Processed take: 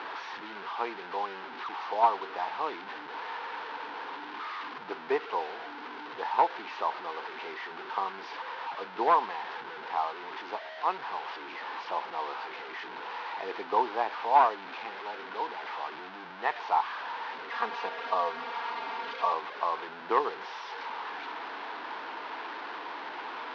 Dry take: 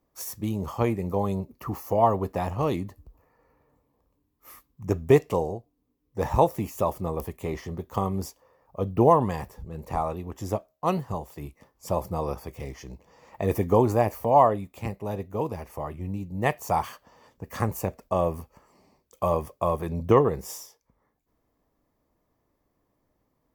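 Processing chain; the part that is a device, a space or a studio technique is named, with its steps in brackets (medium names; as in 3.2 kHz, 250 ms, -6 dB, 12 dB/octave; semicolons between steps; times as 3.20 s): digital answering machine (band-pass 330–3200 Hz; one-bit delta coder 32 kbps, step -29.5 dBFS; cabinet simulation 460–3900 Hz, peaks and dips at 570 Hz -10 dB, 910 Hz +8 dB, 1.5 kHz +7 dB); 17.50–19.33 s: comb 4.3 ms, depth 87%; trim -4 dB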